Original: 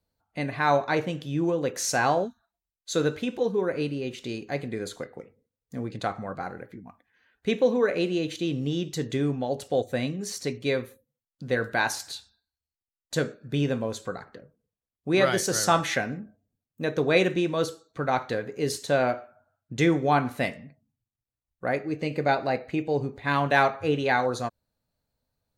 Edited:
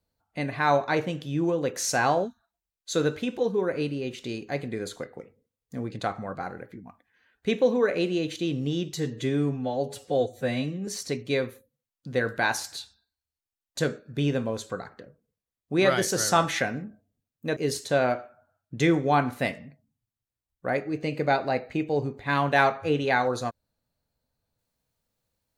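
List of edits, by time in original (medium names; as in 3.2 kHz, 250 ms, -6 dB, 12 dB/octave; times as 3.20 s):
8.94–10.23 s: stretch 1.5×
16.92–18.55 s: delete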